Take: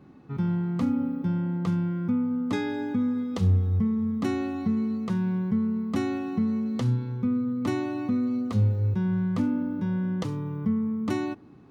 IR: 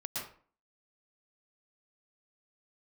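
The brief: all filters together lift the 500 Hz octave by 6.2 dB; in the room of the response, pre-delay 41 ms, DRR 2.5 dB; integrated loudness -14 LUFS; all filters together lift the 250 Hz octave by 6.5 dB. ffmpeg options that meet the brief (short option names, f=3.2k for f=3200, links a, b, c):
-filter_complex "[0:a]equalizer=f=250:t=o:g=6.5,equalizer=f=500:t=o:g=5.5,asplit=2[a][b];[1:a]atrim=start_sample=2205,adelay=41[c];[b][c]afir=irnorm=-1:irlink=0,volume=-4.5dB[d];[a][d]amix=inputs=2:normalize=0,volume=5.5dB"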